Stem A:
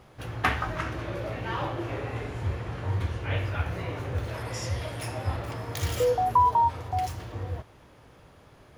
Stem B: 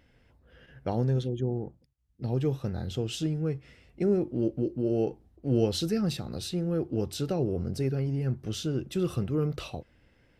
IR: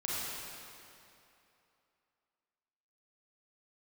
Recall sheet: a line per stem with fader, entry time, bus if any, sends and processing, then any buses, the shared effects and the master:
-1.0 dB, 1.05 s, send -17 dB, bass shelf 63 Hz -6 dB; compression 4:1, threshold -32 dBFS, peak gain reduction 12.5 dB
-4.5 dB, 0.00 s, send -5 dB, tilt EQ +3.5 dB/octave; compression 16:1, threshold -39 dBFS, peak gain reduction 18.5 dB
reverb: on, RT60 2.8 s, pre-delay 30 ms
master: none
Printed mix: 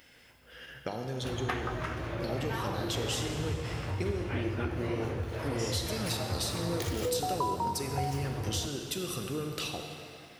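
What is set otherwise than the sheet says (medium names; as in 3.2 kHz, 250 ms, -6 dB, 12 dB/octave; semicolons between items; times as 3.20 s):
stem A: missing bass shelf 63 Hz -6 dB; stem B -4.5 dB -> +3.5 dB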